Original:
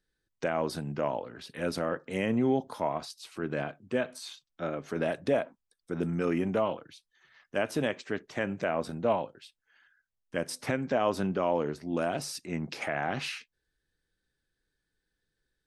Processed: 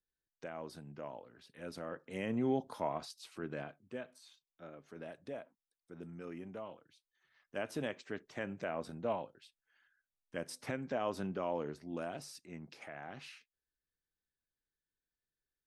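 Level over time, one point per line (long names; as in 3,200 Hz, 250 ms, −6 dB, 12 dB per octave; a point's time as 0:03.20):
0:01.57 −15 dB
0:02.53 −6 dB
0:03.25 −6 dB
0:04.25 −17.5 dB
0:06.70 −17.5 dB
0:07.69 −9 dB
0:11.75 −9 dB
0:12.79 −16 dB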